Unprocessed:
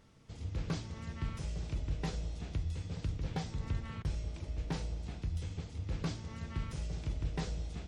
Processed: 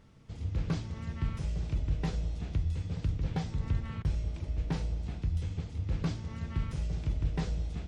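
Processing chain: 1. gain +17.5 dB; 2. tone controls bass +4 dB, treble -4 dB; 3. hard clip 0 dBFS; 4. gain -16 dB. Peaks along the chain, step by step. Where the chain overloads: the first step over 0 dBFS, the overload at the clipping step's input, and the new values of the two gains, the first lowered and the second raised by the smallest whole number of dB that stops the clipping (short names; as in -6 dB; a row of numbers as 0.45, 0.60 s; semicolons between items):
-6.5, -2.5, -2.5, -18.5 dBFS; no overload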